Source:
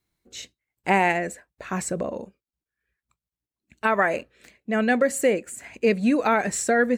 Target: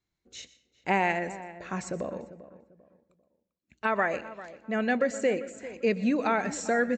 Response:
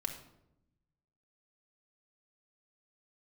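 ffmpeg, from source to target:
-filter_complex "[0:a]asplit=2[link_01][link_02];[link_02]adelay=395,lowpass=frequency=1500:poles=1,volume=-15dB,asplit=2[link_03][link_04];[link_04]adelay=395,lowpass=frequency=1500:poles=1,volume=0.31,asplit=2[link_05][link_06];[link_06]adelay=395,lowpass=frequency=1500:poles=1,volume=0.31[link_07];[link_01][link_03][link_05][link_07]amix=inputs=4:normalize=0,asplit=2[link_08][link_09];[1:a]atrim=start_sample=2205,adelay=122[link_10];[link_09][link_10]afir=irnorm=-1:irlink=0,volume=-17dB[link_11];[link_08][link_11]amix=inputs=2:normalize=0,aresample=16000,aresample=44100,volume=-5.5dB"

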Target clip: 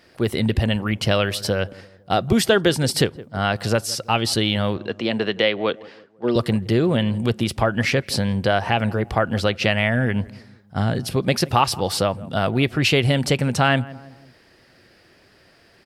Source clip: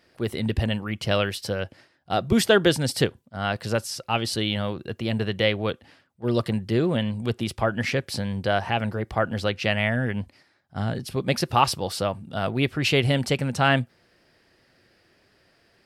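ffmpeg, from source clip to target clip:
ffmpeg -i in.wav -filter_complex "[0:a]asettb=1/sr,asplit=3[link_01][link_02][link_03];[link_01]atrim=end=4.774[link_04];[link_02]atrim=start=4.77:end=6.36,asetpts=PTS-STARTPTS,afade=type=in:duration=0.004:curve=qsin,afade=type=out:start_time=1.586:duration=0.004:curve=qsin,acrossover=split=200 6800:gain=0.112 1 0.0708[link_05][link_06][link_07];[link_05][link_06][link_07]amix=inputs=3:normalize=0[link_08];[link_03]atrim=start=6.356[link_09];[link_04][link_08]acrossfade=duration=0.004:curve1=hsin:curve2=qsin[link_10];[link_10][link_09]acrossfade=duration=0.004:curve1=qsin:curve2=hsin,asplit=2[link_11][link_12];[link_12]adelay=166,lowpass=frequency=1000:poles=1,volume=-21dB,asplit=2[link_13][link_14];[link_14]adelay=166,lowpass=frequency=1000:poles=1,volume=0.48,asplit=2[link_15][link_16];[link_16]adelay=166,lowpass=frequency=1000:poles=1,volume=0.48[link_17];[link_11][link_13][link_15][link_17]amix=inputs=4:normalize=0,acompressor=threshold=-25dB:ratio=2,volume=7.5dB" out.wav

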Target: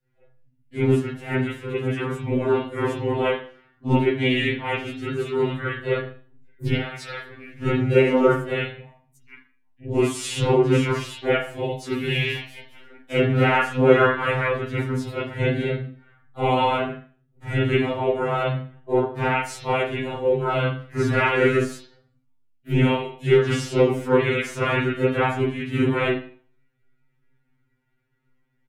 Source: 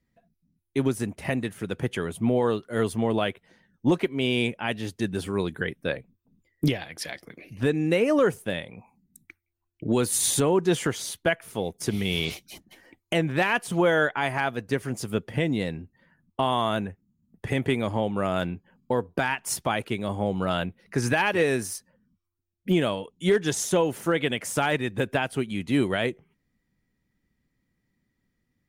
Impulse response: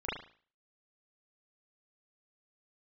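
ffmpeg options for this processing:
-filter_complex "[0:a]bandreject=frequency=222.4:width_type=h:width=4,bandreject=frequency=444.8:width_type=h:width=4,bandreject=frequency=667.2:width_type=h:width=4,bandreject=frequency=889.6:width_type=h:width=4,asplit=4[link_01][link_02][link_03][link_04];[link_02]asetrate=33038,aresample=44100,atempo=1.33484,volume=-2dB[link_05];[link_03]asetrate=37084,aresample=44100,atempo=1.18921,volume=-3dB[link_06];[link_04]asetrate=52444,aresample=44100,atempo=0.840896,volume=-10dB[link_07];[link_01][link_05][link_06][link_07]amix=inputs=4:normalize=0,acrossover=split=9400[link_08][link_09];[link_09]acompressor=threshold=-42dB:ratio=4:attack=1:release=60[link_10];[link_08][link_10]amix=inputs=2:normalize=0[link_11];[1:a]atrim=start_sample=2205[link_12];[link_11][link_12]afir=irnorm=-1:irlink=0,afftfilt=real='re*2.45*eq(mod(b,6),0)':imag='im*2.45*eq(mod(b,6),0)':win_size=2048:overlap=0.75,volume=-2.5dB"

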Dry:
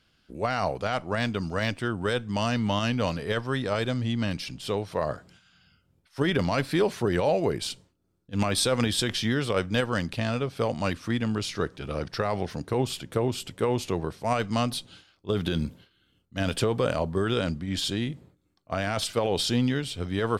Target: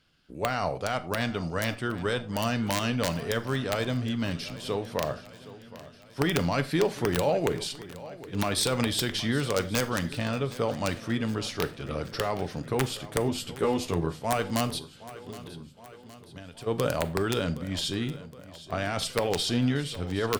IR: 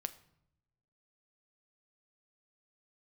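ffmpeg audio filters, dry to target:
-filter_complex "[0:a]asplit=3[link_01][link_02][link_03];[link_01]afade=type=out:start_time=14.78:duration=0.02[link_04];[link_02]acompressor=threshold=-42dB:ratio=5,afade=type=in:start_time=14.78:duration=0.02,afade=type=out:start_time=16.66:duration=0.02[link_05];[link_03]afade=type=in:start_time=16.66:duration=0.02[link_06];[link_04][link_05][link_06]amix=inputs=3:normalize=0,aeval=exprs='(mod(5.01*val(0)+1,2)-1)/5.01':channel_layout=same,asettb=1/sr,asplit=3[link_07][link_08][link_09];[link_07]atrim=end=13.274[link_10];[link_08]atrim=start=13.27:end=14.17,asetpts=PTS-STARTPTS,afade=type=in:duration=0.004:curve=qsin,afade=type=out:start_time=0.896:duration=0.004:curve=qsin,asplit=2[link_11][link_12];[link_12]adelay=12,volume=-3.5dB[link_13];[link_11][link_13]amix=inputs=2:normalize=0,atrim=end_sample=39690[link_14];[link_09]atrim=start=14.166[link_15];[link_10][link_14]acrossfade=duration=0.004:curve1=hsin:curve2=qsin[link_16];[link_16][link_15]acrossfade=duration=0.004:curve1=qsin:curve2=hsin,aecho=1:1:767|1534|2301|3068|3835:0.141|0.0791|0.0443|0.0248|0.0139[link_17];[1:a]atrim=start_sample=2205,afade=type=out:start_time=0.16:duration=0.01,atrim=end_sample=7497[link_18];[link_17][link_18]afir=irnorm=-1:irlink=0"

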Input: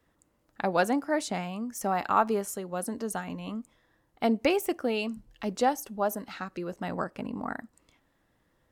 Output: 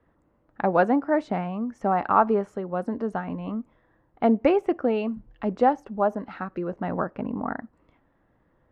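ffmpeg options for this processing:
ffmpeg -i in.wav -af "lowpass=1500,volume=5.5dB" out.wav

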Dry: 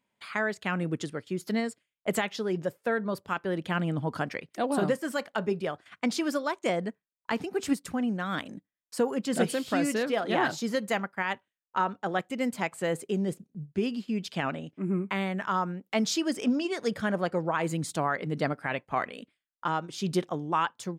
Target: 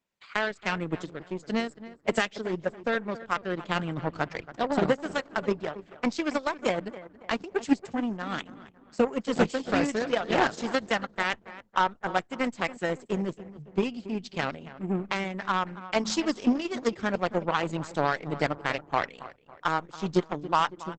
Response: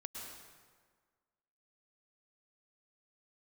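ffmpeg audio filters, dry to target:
-filter_complex "[0:a]asplit=3[link_01][link_02][link_03];[link_01]afade=type=out:start_time=15.65:duration=0.02[link_04];[link_02]bandreject=frequency=54.16:width_type=h:width=4,bandreject=frequency=108.32:width_type=h:width=4,bandreject=frequency=162.48:width_type=h:width=4,bandreject=frequency=216.64:width_type=h:width=4,bandreject=frequency=270.8:width_type=h:width=4,afade=type=in:start_time=15.65:duration=0.02,afade=type=out:start_time=16.24:duration=0.02[link_05];[link_03]afade=type=in:start_time=16.24:duration=0.02[link_06];[link_04][link_05][link_06]amix=inputs=3:normalize=0,asettb=1/sr,asplit=3[link_07][link_08][link_09];[link_07]atrim=end=18.374[link_10];[link_08]atrim=start=18.37:end=19.83,asetpts=PTS-STARTPTS,afade=type=in:duration=0.004:curve=qsin,afade=type=out:start_time=1.456:duration=0.004:curve=qsin,highshelf=frequency=7700:gain=11.5[link_11];[link_09]atrim=start=19.826[link_12];[link_10][link_11]acrossfade=duration=0.004:curve1=hsin:curve2=qsin[link_13];[link_13][link_12]acrossfade=duration=0.004:curve1=qsin:curve2=hsin,aeval=exprs='0.251*(cos(1*acos(clip(val(0)/0.251,-1,1)))-cos(1*PI/2))+0.0251*(cos(7*acos(clip(val(0)/0.251,-1,1)))-cos(7*PI/2))':channel_layout=same,asplit=2[link_14][link_15];[link_15]adelay=277,lowpass=frequency=2200:poles=1,volume=-15dB,asplit=2[link_16][link_17];[link_17]adelay=277,lowpass=frequency=2200:poles=1,volume=0.45,asplit=2[link_18][link_19];[link_19]adelay=277,lowpass=frequency=2200:poles=1,volume=0.45,asplit=2[link_20][link_21];[link_21]adelay=277,lowpass=frequency=2200:poles=1,volume=0.45[link_22];[link_16][link_18][link_20][link_22]amix=inputs=4:normalize=0[link_23];[link_14][link_23]amix=inputs=2:normalize=0,volume=4dB" -ar 48000 -c:a libopus -b:a 10k

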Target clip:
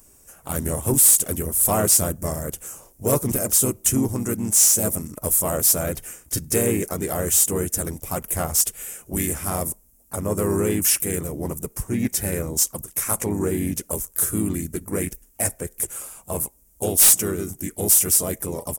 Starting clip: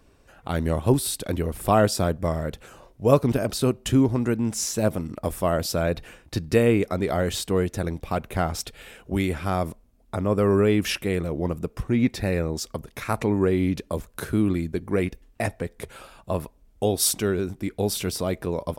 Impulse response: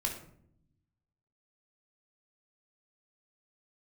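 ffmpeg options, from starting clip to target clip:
-filter_complex "[0:a]asplit=3[link_01][link_02][link_03];[link_02]asetrate=37084,aresample=44100,atempo=1.18921,volume=-5dB[link_04];[link_03]asetrate=52444,aresample=44100,atempo=0.840896,volume=-16dB[link_05];[link_01][link_04][link_05]amix=inputs=3:normalize=0,aexciter=amount=7.9:drive=9.1:freq=6100,acontrast=53,volume=-9dB"

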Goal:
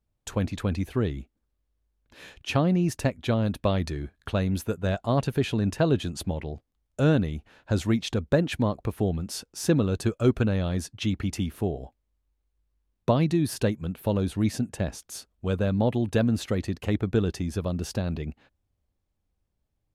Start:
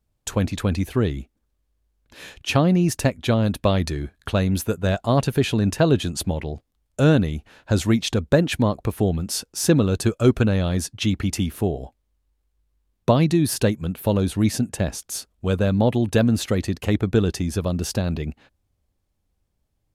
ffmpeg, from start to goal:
ffmpeg -i in.wav -af "highshelf=frequency=5000:gain=-6,volume=-5dB" out.wav

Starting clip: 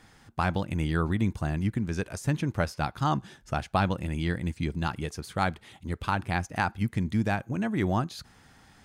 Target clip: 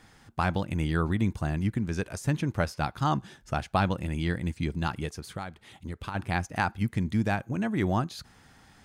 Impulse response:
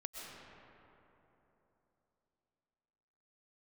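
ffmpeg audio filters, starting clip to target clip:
-filter_complex "[0:a]asplit=3[link_01][link_02][link_03];[link_01]afade=type=out:start_time=5.09:duration=0.02[link_04];[link_02]acompressor=threshold=-33dB:ratio=10,afade=type=in:start_time=5.09:duration=0.02,afade=type=out:start_time=6.14:duration=0.02[link_05];[link_03]afade=type=in:start_time=6.14:duration=0.02[link_06];[link_04][link_05][link_06]amix=inputs=3:normalize=0"

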